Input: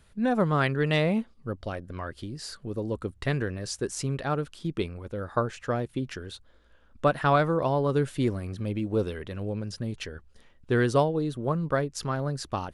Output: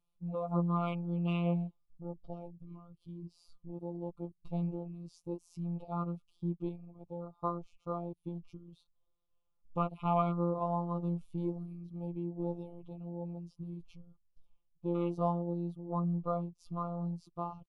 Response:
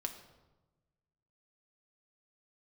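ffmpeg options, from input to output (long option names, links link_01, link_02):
-af "afwtdn=0.0355,asuperstop=centerf=1700:order=12:qfactor=1.9,afftfilt=real='hypot(re,im)*cos(PI*b)':imag='0':win_size=1024:overlap=0.75,equalizer=frequency=250:width_type=o:width=1:gain=-6,equalizer=frequency=500:width_type=o:width=1:gain=-6,equalizer=frequency=2000:width_type=o:width=1:gain=-6,equalizer=frequency=4000:width_type=o:width=1:gain=-4,equalizer=frequency=8000:width_type=o:width=1:gain=-11,atempo=0.72"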